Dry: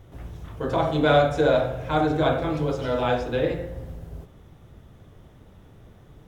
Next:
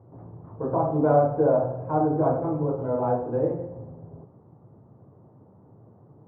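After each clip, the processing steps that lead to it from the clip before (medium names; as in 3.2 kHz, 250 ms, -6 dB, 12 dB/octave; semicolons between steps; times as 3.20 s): Chebyshev band-pass 110–1000 Hz, order 3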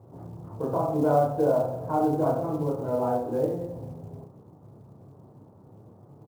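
in parallel at 0 dB: compression 8:1, threshold -31 dBFS, peak gain reduction 16.5 dB; on the sum: doubling 29 ms -4 dB; short-mantissa float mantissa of 4-bit; trim -5.5 dB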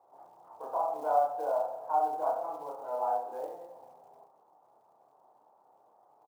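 resonant high-pass 790 Hz, resonance Q 3.4; trim -9 dB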